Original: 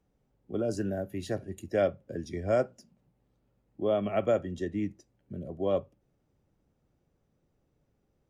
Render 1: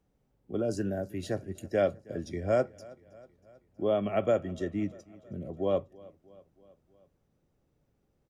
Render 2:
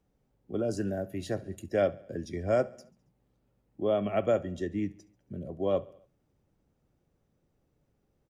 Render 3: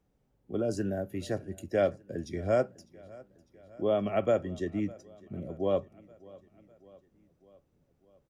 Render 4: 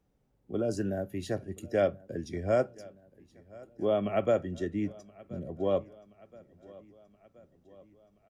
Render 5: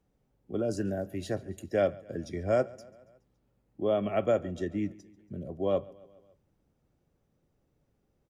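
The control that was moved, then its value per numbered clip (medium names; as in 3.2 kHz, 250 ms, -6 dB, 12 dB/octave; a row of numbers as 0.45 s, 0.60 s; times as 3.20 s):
feedback delay, time: 320 ms, 69 ms, 602 ms, 1025 ms, 140 ms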